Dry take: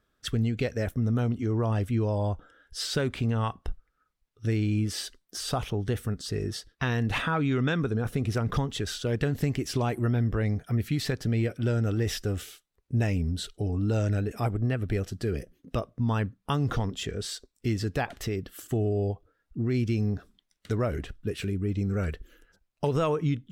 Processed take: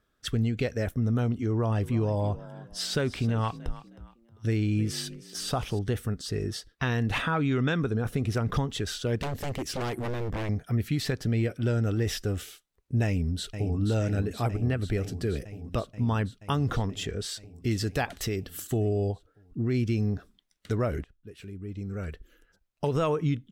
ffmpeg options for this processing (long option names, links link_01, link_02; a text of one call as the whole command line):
ffmpeg -i in.wav -filter_complex "[0:a]asettb=1/sr,asplit=3[link_01][link_02][link_03];[link_01]atrim=end=1.514[link_04];[link_02]atrim=start=1.51:end=5.79,asetpts=PTS-STARTPTS,afade=type=in:duration=0.004:curve=qsin,afade=type=out:start_time=4.276:duration=0.004:curve=qsin,asplit=4[link_05][link_06][link_07][link_08];[link_06]adelay=314,afreqshift=38,volume=-16.5dB[link_09];[link_07]adelay=628,afreqshift=76,volume=-27dB[link_10];[link_08]adelay=942,afreqshift=114,volume=-37.4dB[link_11];[link_05][link_09][link_10][link_11]amix=inputs=4:normalize=0,atrim=end_sample=188748[link_12];[link_03]atrim=start=5.786[link_13];[link_04][link_12]acrossfade=duration=0.004:curve1=hsin:curve2=qsin[link_14];[link_14][link_13]acrossfade=duration=0.004:curve1=qsin:curve2=hsin,asettb=1/sr,asplit=3[link_15][link_16][link_17];[link_15]atrim=end=9.164[link_18];[link_16]atrim=start=9.16:end=10.49,asetpts=PTS-STARTPTS,afade=type=in:duration=0.004:curve=qsin,afade=type=out:start_time=1.326:duration=0.004:curve=qsin,aeval=exprs='0.0501*(abs(mod(val(0)/0.0501+3,4)-2)-1)':channel_layout=same[link_19];[link_17]atrim=start=10.486[link_20];[link_18][link_19]acrossfade=duration=0.004:curve1=hsin:curve2=qsin[link_21];[link_21][link_20]acrossfade=duration=0.004:curve1=qsin:curve2=hsin,asplit=2[link_22][link_23];[link_23]afade=type=in:start_time=13.05:duration=0.01,afade=type=out:start_time=13.77:duration=0.01,aecho=0:1:480|960|1440|1920|2400|2880|3360|3840|4320|4800|5280|5760:0.375837|0.30067|0.240536|0.192429|0.153943|0.123154|0.0985235|0.0788188|0.0630551|0.050444|0.0403552|0.0322842[link_24];[link_22][link_24]amix=inputs=2:normalize=0,asettb=1/sr,asplit=3[link_25][link_26][link_27];[link_25]atrim=end=17.714[link_28];[link_26]atrim=start=17.71:end=19.12,asetpts=PTS-STARTPTS,afade=type=in:duration=0.004:curve=qsin,afade=type=out:start_time=1.406:duration=0.004:curve=qsin,highshelf=frequency=3400:gain=6.5[link_29];[link_27]atrim=start=19.116[link_30];[link_28][link_29]acrossfade=duration=0.004:curve1=hsin:curve2=qsin[link_31];[link_31][link_30]acrossfade=duration=0.004:curve1=qsin:curve2=hsin,asplit=2[link_32][link_33];[link_32]atrim=end=21.04,asetpts=PTS-STARTPTS,afade=type=out:start_time=21.036:duration=0.004:curve=hsin:silence=0.0707946[link_34];[link_33]atrim=start=21.04,asetpts=PTS-STARTPTS,afade=type=in:duration=2.07:silence=0.0707946[link_35];[link_34][link_35]concat=n=2:v=0:a=1" out.wav